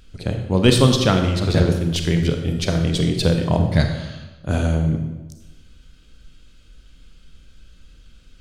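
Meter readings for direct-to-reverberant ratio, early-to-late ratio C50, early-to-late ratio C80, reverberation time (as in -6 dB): 4.5 dB, 6.0 dB, 8.0 dB, 1.1 s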